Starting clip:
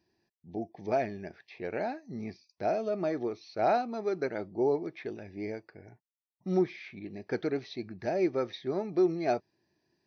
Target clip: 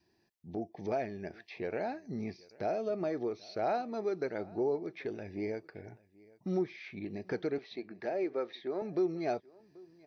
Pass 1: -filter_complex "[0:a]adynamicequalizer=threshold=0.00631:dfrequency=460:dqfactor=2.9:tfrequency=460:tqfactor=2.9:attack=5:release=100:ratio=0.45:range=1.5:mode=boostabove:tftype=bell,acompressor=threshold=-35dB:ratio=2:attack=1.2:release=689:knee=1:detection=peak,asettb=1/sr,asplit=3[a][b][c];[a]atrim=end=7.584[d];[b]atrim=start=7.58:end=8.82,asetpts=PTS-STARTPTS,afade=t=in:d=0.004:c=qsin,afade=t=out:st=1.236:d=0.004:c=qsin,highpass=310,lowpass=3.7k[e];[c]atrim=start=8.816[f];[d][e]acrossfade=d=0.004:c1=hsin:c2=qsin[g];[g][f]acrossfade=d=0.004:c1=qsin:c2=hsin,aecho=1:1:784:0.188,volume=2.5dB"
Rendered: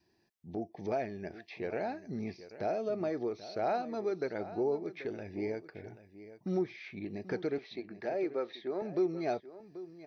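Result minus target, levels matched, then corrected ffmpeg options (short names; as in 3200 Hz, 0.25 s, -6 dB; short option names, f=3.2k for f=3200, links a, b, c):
echo-to-direct +9 dB
-filter_complex "[0:a]adynamicequalizer=threshold=0.00631:dfrequency=460:dqfactor=2.9:tfrequency=460:tqfactor=2.9:attack=5:release=100:ratio=0.45:range=1.5:mode=boostabove:tftype=bell,acompressor=threshold=-35dB:ratio=2:attack=1.2:release=689:knee=1:detection=peak,asettb=1/sr,asplit=3[a][b][c];[a]atrim=end=7.584[d];[b]atrim=start=7.58:end=8.82,asetpts=PTS-STARTPTS,afade=t=in:d=0.004:c=qsin,afade=t=out:st=1.236:d=0.004:c=qsin,highpass=310,lowpass=3.7k[e];[c]atrim=start=8.816[f];[d][e]acrossfade=d=0.004:c1=hsin:c2=qsin[g];[g][f]acrossfade=d=0.004:c1=qsin:c2=hsin,aecho=1:1:784:0.0668,volume=2.5dB"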